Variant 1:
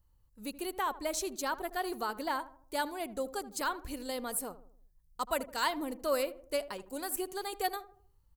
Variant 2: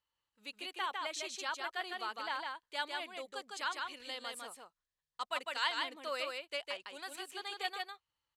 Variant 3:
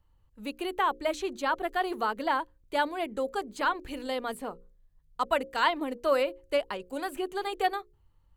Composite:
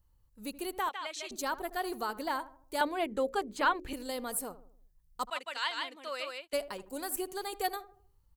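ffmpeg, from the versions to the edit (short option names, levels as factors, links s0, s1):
-filter_complex "[1:a]asplit=2[s0][s1];[0:a]asplit=4[s2][s3][s4][s5];[s2]atrim=end=0.892[s6];[s0]atrim=start=0.888:end=1.312[s7];[s3]atrim=start=1.308:end=2.812[s8];[2:a]atrim=start=2.808:end=3.932[s9];[s4]atrim=start=3.928:end=5.302[s10];[s1]atrim=start=5.298:end=6.532[s11];[s5]atrim=start=6.528[s12];[s6][s7]acrossfade=d=0.004:c1=hsin:c2=hsin[s13];[s13][s8]acrossfade=d=0.004:c1=hsin:c2=hsin[s14];[s14][s9]acrossfade=d=0.004:c1=hsin:c2=hsin[s15];[s15][s10]acrossfade=d=0.004:c1=hsin:c2=hsin[s16];[s16][s11]acrossfade=d=0.004:c1=hsin:c2=hsin[s17];[s17][s12]acrossfade=d=0.004:c1=hsin:c2=hsin"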